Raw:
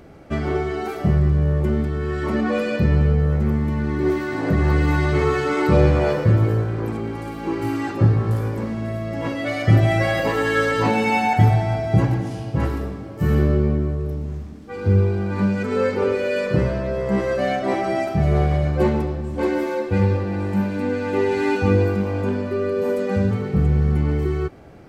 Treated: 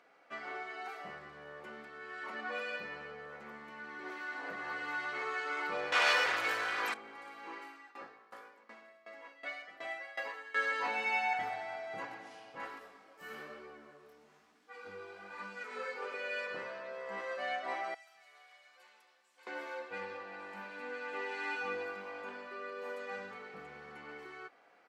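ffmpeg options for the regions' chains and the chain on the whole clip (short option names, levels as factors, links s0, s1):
-filter_complex "[0:a]asettb=1/sr,asplit=3[s0][s1][s2];[s0]atrim=end=5.924[s3];[s1]atrim=start=5.92:end=6.94,asetpts=PTS-STARTPTS,afade=t=in:d=0.004:c=qsin,afade=t=out:st=1.016:d=0.004:c=qsin,tiltshelf=f=1300:g=-9.5,aeval=exprs='0.299*sin(PI/2*3.55*val(0)/0.299)':c=same[s4];[s2]atrim=start=6.936[s5];[s3][s4]acrossfade=d=0.004:c1=hsin:c2=qsin[s6];[s6][s5]acrossfade=d=0.004:c1=qsin:c2=hsin,asettb=1/sr,asplit=3[s7][s8][s9];[s7]atrim=end=7.584[s10];[s8]atrim=start=7.58:end=10.56,asetpts=PTS-STARTPTS,afade=t=in:d=0.004:c=qsin,afade=t=out:st=2.976:d=0.004:c=qsin,highpass=220,aeval=exprs='val(0)*pow(10,-19*if(lt(mod(2.7*n/s,1),2*abs(2.7)/1000),1-mod(2.7*n/s,1)/(2*abs(2.7)/1000),(mod(2.7*n/s,1)-2*abs(2.7)/1000)/(1-2*abs(2.7)/1000))/20)':c=same[s11];[s9]atrim=start=10.556[s12];[s10][s11]acrossfade=d=0.004:c1=hsin:c2=qsin[s13];[s13][s12]acrossfade=d=0.004:c1=qsin:c2=hsin,asettb=1/sr,asplit=3[s14][s15][s16];[s14]atrim=end=12.794[s17];[s15]atrim=start=12.79:end=16.14,asetpts=PTS-STARTPTS,afade=t=in:d=0.004:c=qsin,afade=t=out:st=3.346:d=0.004:c=qsin,flanger=delay=16:depth=7.1:speed=1.1,highshelf=f=6300:g=10.5[s18];[s16]atrim=start=16.136[s19];[s17][s18]acrossfade=d=0.004:c1=hsin:c2=qsin[s20];[s20][s19]acrossfade=d=0.004:c1=qsin:c2=hsin,asettb=1/sr,asplit=3[s21][s22][s23];[s21]atrim=end=17.944[s24];[s22]atrim=start=17.94:end=19.47,asetpts=PTS-STARTPTS,afade=t=in:d=0.004:c=qsin,afade=t=out:st=1.526:d=0.004:c=qsin,aderivative,acompressor=threshold=0.00501:ratio=2:attack=3.2:release=140:knee=1:detection=peak[s25];[s23]atrim=start=19.466[s26];[s24][s25]acrossfade=d=0.004:c1=hsin:c2=qsin[s27];[s27][s26]acrossfade=d=0.004:c1=qsin:c2=hsin,highpass=1100,aemphasis=mode=reproduction:type=75kf,aecho=1:1:4.1:0.32,volume=0.447"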